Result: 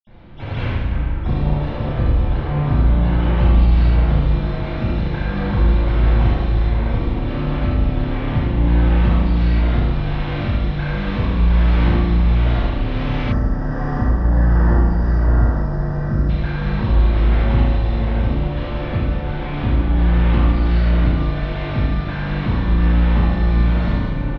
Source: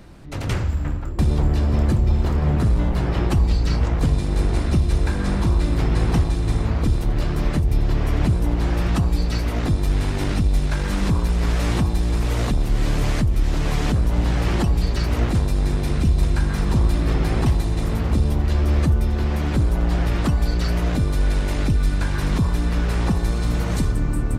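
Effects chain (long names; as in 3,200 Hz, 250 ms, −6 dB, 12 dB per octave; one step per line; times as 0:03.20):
ambience of single reflections 31 ms −7.5 dB, 75 ms −4.5 dB
convolution reverb RT60 1.5 s, pre-delay 47 ms
gain on a spectral selection 0:13.32–0:16.30, 2,000–4,600 Hz −20 dB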